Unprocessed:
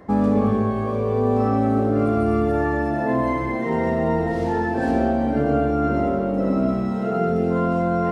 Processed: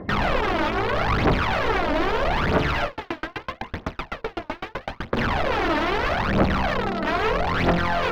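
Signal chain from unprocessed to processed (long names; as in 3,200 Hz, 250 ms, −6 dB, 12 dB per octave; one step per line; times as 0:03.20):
dynamic equaliser 240 Hz, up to −4 dB, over −29 dBFS, Q 0.71
brickwall limiter −16 dBFS, peak gain reduction 5 dB
wrap-around overflow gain 20 dB
phase shifter 0.78 Hz, delay 3.4 ms, feedback 67%
high-frequency loss of the air 300 metres
0:02.85–0:05.17: tremolo with a ramp in dB decaying 7.9 Hz, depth 39 dB
level +2.5 dB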